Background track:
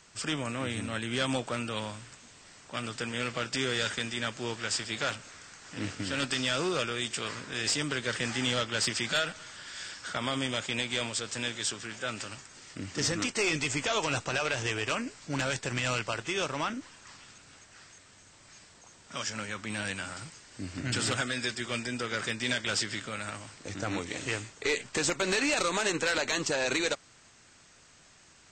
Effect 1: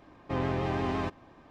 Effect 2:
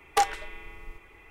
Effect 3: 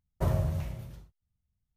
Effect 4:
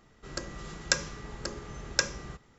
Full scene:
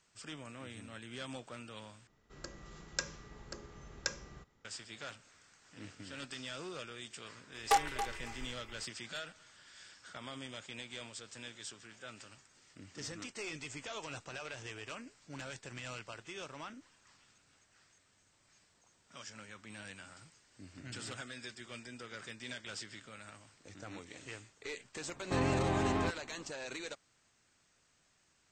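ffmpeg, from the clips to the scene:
-filter_complex "[0:a]volume=0.188[s0];[2:a]aecho=1:1:277|554:0.299|0.0537[s1];[s0]asplit=2[s2][s3];[s2]atrim=end=2.074[s4];[4:a]atrim=end=2.58,asetpts=PTS-STARTPTS,volume=0.299[s5];[s3]atrim=start=4.646[s6];[s1]atrim=end=1.3,asetpts=PTS-STARTPTS,volume=0.562,afade=t=in:d=0.004:c=hsin,afade=t=out:st=1.296:d=0.004:c=hsin,adelay=332514S[s7];[1:a]atrim=end=1.5,asetpts=PTS-STARTPTS,volume=0.794,afade=t=in:d=0.004:c=hsin,afade=t=out:st=1.496:d=0.004:c=hsin,adelay=25010[s8];[s4][s5]acrossfade=d=0.004:c1=hsin:c2=hsin[s9];[s9][s6]acrossfade=d=0.004:c1=hsin:c2=hsin[s10];[s10][s7][s8]amix=inputs=3:normalize=0"

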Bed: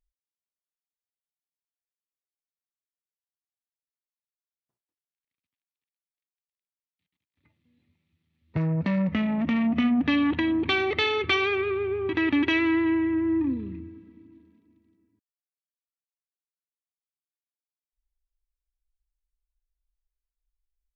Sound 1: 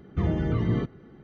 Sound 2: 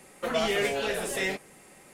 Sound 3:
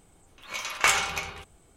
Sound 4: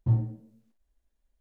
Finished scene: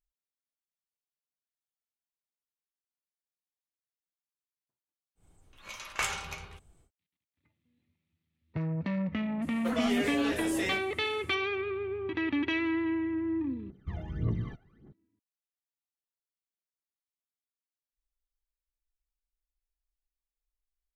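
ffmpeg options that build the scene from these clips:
-filter_complex "[0:a]volume=0.447[s0];[3:a]lowshelf=f=160:g=10[s1];[2:a]alimiter=limit=0.119:level=0:latency=1:release=71[s2];[1:a]aphaser=in_gain=1:out_gain=1:delay=1.5:decay=0.79:speed=1.7:type=triangular[s3];[s0]asplit=2[s4][s5];[s4]atrim=end=13.704[s6];[s3]atrim=end=1.23,asetpts=PTS-STARTPTS,volume=0.168[s7];[s5]atrim=start=14.926[s8];[s1]atrim=end=1.76,asetpts=PTS-STARTPTS,volume=0.316,afade=t=in:d=0.1,afade=t=out:st=1.66:d=0.1,adelay=5150[s9];[s2]atrim=end=1.93,asetpts=PTS-STARTPTS,volume=0.596,afade=t=in:d=0.004:c=hsin,afade=t=out:st=1.926:d=0.004:c=hsin,adelay=9420[s10];[s6][s7]acrossfade=d=0.004:c1=hsin:c2=hsin[s11];[s11][s8]acrossfade=d=0.004:c1=hsin:c2=hsin[s12];[s12][s9][s10]amix=inputs=3:normalize=0"

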